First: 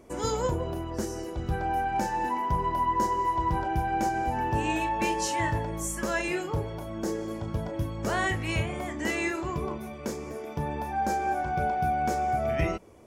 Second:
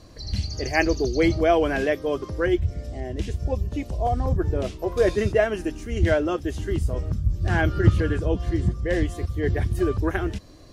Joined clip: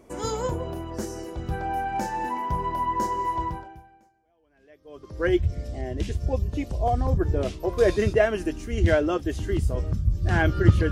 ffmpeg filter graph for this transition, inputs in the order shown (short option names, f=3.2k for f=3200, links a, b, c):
-filter_complex "[0:a]apad=whole_dur=10.91,atrim=end=10.91,atrim=end=5.27,asetpts=PTS-STARTPTS[a];[1:a]atrim=start=0.62:end=8.1,asetpts=PTS-STARTPTS[b];[a][b]acrossfade=d=1.84:c1=exp:c2=exp"